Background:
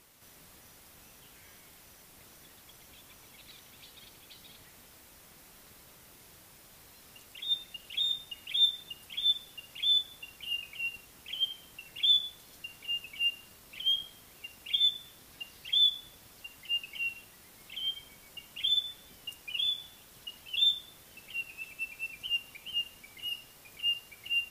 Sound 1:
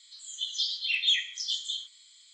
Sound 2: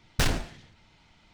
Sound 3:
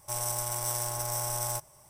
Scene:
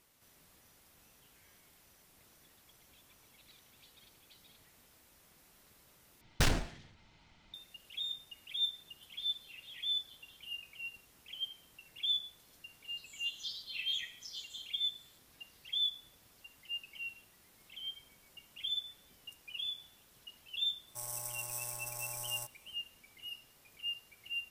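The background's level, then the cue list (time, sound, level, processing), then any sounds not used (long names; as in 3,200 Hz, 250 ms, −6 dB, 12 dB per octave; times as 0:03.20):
background −8.5 dB
0:06.21: overwrite with 2 −4 dB
0:08.60: mix in 1 −17.5 dB + high-frequency loss of the air 460 metres
0:12.85: mix in 1 −10 dB + barber-pole flanger 5.6 ms +2 Hz
0:20.87: mix in 3 −14 dB + high-shelf EQ 5,800 Hz +7.5 dB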